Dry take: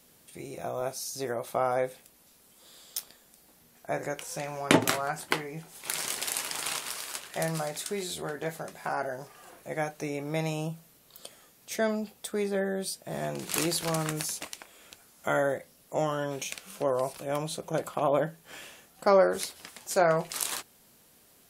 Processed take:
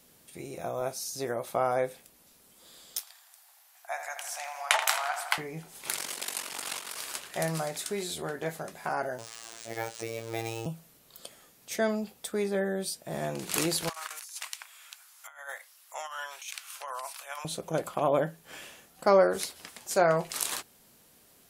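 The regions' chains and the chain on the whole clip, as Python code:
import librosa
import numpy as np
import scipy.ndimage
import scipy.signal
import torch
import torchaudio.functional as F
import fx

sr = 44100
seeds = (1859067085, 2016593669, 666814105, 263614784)

y = fx.chain(x, sr, fx.ellip_highpass(hz=720.0, order=4, stop_db=70),
    fx.high_shelf(hz=4300.0, db=3.0),
    fx.echo_filtered(ms=82, feedback_pct=74, hz=4300.0, wet_db=-8.0), at=(2.99, 5.38))
y = fx.chain(y, sr, fx.highpass(hz=160.0, slope=24),
    fx.ring_mod(carrier_hz=23.0), at=(5.95, 6.97))
y = fx.chain(y, sr, fx.crossing_spikes(level_db=-27.5),
    fx.robotise(hz=114.0),
    fx.resample_bad(factor=3, down='filtered', up='hold'), at=(9.18, 10.66))
y = fx.chain(y, sr, fx.highpass(hz=970.0, slope=24),
    fx.over_compress(threshold_db=-39.0, ratio=-0.5), at=(13.89, 17.45))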